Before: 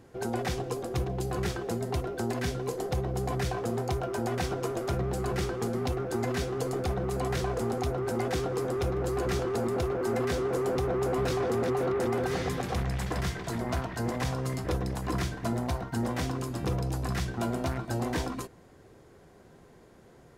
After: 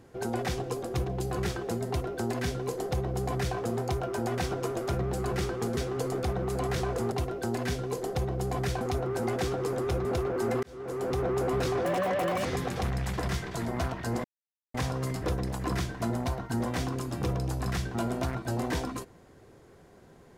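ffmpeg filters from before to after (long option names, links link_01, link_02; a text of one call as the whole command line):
ffmpeg -i in.wav -filter_complex "[0:a]asplit=9[link_01][link_02][link_03][link_04][link_05][link_06][link_07][link_08][link_09];[link_01]atrim=end=5.772[link_10];[link_02]atrim=start=6.378:end=7.732[link_11];[link_03]atrim=start=1.878:end=3.572[link_12];[link_04]atrim=start=7.728:end=8.972[link_13];[link_05]atrim=start=9.698:end=10.28,asetpts=PTS-STARTPTS,afade=type=out:start_time=0.578:duration=0.004:curve=hsin[link_14];[link_06]atrim=start=10.28:end=11.504,asetpts=PTS-STARTPTS,afade=type=in:duration=0.57[link_15];[link_07]atrim=start=11.5:end=12.38,asetpts=PTS-STARTPTS,asetrate=64386,aresample=44100[link_16];[link_08]atrim=start=12.376:end=14.17,asetpts=PTS-STARTPTS,afade=type=out:start_time=1.79:duration=0.004:curve=hsin,apad=pad_dur=0.5[link_17];[link_09]atrim=start=14.17,asetpts=PTS-STARTPTS,afade=type=in:duration=0.004:curve=hsin[link_18];[link_10][link_11]acrossfade=duration=0.004:curve1=hsin:curve2=hsin[link_19];[link_19][link_12]acrossfade=duration=0.004:curve1=hsin:curve2=hsin[link_20];[link_20][link_13]acrossfade=duration=0.004:curve1=hsin:curve2=hsin[link_21];[link_14][link_15]concat=n=2:v=0:a=1[link_22];[link_21][link_22]acrossfade=duration=0.004:curve1=hsin:curve2=hsin[link_23];[link_23][link_16]acrossfade=duration=0.004:curve1=hsin:curve2=hsin[link_24];[link_17][link_18]concat=n=2:v=0:a=1[link_25];[link_24][link_25]acrossfade=duration=0.004:curve1=hsin:curve2=hsin" out.wav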